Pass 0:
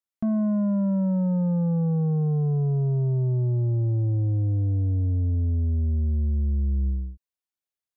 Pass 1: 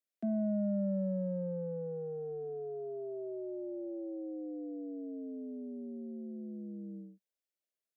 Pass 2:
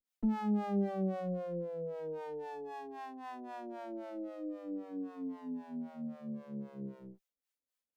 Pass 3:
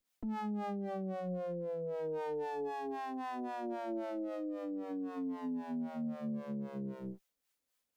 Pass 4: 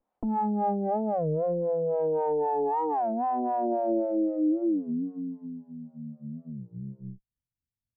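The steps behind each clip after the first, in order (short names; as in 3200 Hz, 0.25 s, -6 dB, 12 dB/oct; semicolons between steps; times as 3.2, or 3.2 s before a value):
EQ curve 240 Hz 0 dB, 640 Hz +7 dB, 1000 Hz -22 dB, 1600 Hz -1 dB; limiter -24 dBFS, peak gain reduction 6.5 dB; steep high-pass 190 Hz 72 dB/oct; gain -3 dB
minimum comb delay 3.9 ms; harmonic tremolo 3.8 Hz, depth 100%, crossover 540 Hz; gain +5.5 dB
compressor 3:1, threshold -42 dBFS, peak gain reduction 11 dB; limiter -40.5 dBFS, peak gain reduction 9 dB; gain +8 dB
low-pass sweep 820 Hz -> 110 Hz, 3.54–5.7; dynamic EQ 1200 Hz, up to -6 dB, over -54 dBFS, Q 2.2; record warp 33 1/3 rpm, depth 250 cents; gain +8.5 dB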